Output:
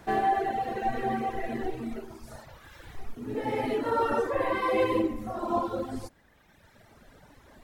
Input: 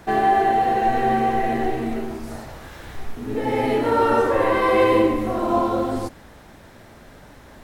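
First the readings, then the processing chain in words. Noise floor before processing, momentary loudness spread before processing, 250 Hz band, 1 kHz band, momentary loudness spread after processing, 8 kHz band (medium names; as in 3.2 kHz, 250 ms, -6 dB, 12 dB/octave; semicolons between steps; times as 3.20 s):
-46 dBFS, 18 LU, -9.0 dB, -9.5 dB, 21 LU, no reading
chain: reverb removal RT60 1.7 s; trim -6 dB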